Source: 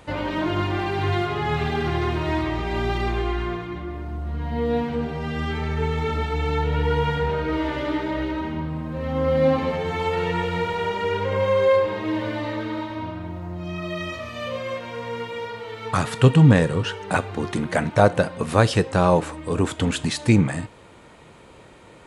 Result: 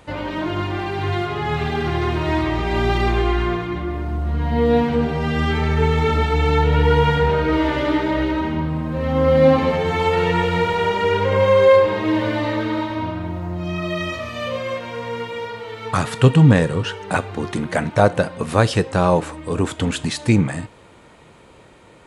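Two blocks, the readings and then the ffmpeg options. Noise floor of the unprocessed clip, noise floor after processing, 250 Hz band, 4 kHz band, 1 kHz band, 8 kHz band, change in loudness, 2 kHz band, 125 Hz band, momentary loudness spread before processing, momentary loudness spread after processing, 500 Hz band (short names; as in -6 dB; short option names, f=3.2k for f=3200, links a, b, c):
-47 dBFS, -47 dBFS, +3.5 dB, +3.5 dB, +4.0 dB, n/a, +4.0 dB, +4.0 dB, +3.0 dB, 12 LU, 12 LU, +4.5 dB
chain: -af "dynaudnorm=f=980:g=5:m=7.5dB"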